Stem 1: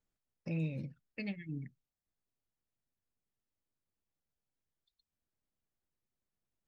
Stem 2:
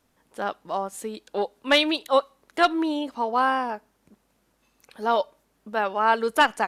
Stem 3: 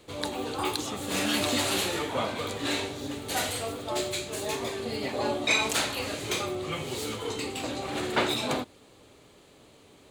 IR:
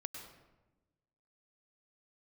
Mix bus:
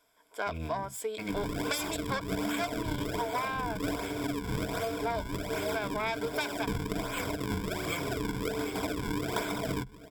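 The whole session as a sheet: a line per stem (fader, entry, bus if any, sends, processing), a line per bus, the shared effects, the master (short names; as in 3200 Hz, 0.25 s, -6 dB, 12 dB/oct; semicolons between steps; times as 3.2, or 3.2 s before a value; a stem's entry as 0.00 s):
+3.0 dB, 0.00 s, no send, cycle switcher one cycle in 2, muted
-0.5 dB, 0.00 s, no send, self-modulated delay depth 0.2 ms; HPF 470 Hz 12 dB/oct
+3.0 dB, 1.20 s, no send, decimation with a swept rate 40×, swing 160% 1.3 Hz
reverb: off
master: ripple EQ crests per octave 1.7, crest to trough 12 dB; compressor 10:1, threshold -29 dBFS, peak gain reduction 17.5 dB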